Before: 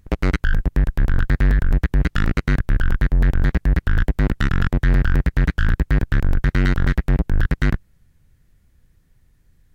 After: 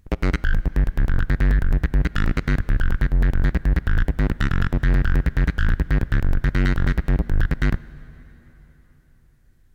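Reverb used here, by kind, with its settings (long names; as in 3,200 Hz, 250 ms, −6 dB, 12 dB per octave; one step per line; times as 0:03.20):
dense smooth reverb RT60 4.1 s, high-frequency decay 0.8×, DRR 18 dB
level −2 dB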